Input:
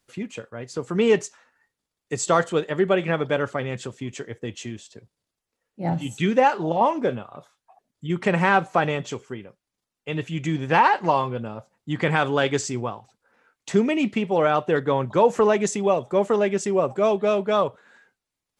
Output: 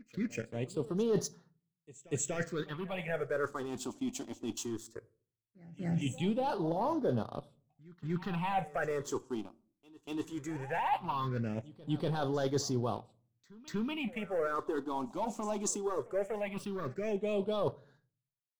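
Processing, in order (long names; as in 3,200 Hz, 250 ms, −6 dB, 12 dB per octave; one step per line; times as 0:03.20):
leveller curve on the samples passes 2
downward expander −47 dBFS
reversed playback
downward compressor 6 to 1, threshold −25 dBFS, peak gain reduction 15 dB
reversed playback
all-pass phaser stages 6, 0.18 Hz, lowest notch 120–2,400 Hz
echo ahead of the sound 241 ms −20 dB
on a send at −18.5 dB: convolution reverb RT60 0.45 s, pre-delay 3 ms
on the sum: level −4.5 dB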